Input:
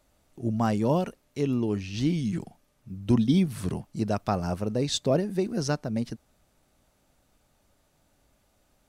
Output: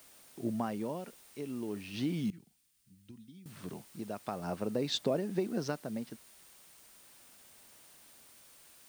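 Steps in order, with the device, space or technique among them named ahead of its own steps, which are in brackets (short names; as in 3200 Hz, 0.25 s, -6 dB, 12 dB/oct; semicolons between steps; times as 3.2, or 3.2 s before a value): medium wave at night (BPF 190–4100 Hz; compressor, threshold -27 dBFS, peak gain reduction 9 dB; tremolo 0.39 Hz, depth 67%; whine 9000 Hz -64 dBFS; white noise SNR 21 dB); 2.3–3.46 passive tone stack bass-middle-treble 6-0-2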